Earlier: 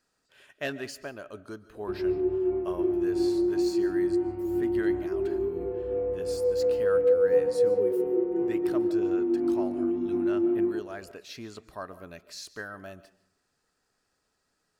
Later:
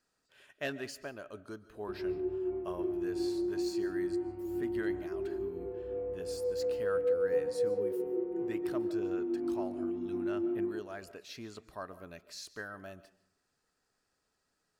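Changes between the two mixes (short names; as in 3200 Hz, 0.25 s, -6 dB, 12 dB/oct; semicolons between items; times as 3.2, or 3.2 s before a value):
speech -4.0 dB; background -8.0 dB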